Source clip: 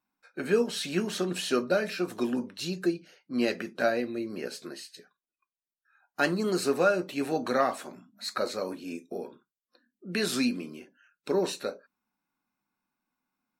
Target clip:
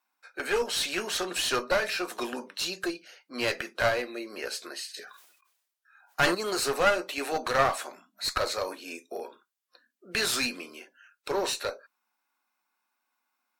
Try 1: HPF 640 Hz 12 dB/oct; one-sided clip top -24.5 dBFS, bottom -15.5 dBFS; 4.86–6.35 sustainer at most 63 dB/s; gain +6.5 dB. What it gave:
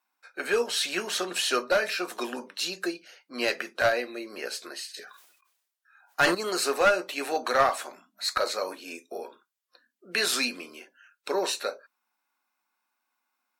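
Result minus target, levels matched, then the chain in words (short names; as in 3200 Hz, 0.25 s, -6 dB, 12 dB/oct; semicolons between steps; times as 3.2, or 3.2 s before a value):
one-sided clip: distortion -7 dB
HPF 640 Hz 12 dB/oct; one-sided clip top -33.5 dBFS, bottom -15.5 dBFS; 4.86–6.35 sustainer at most 63 dB/s; gain +6.5 dB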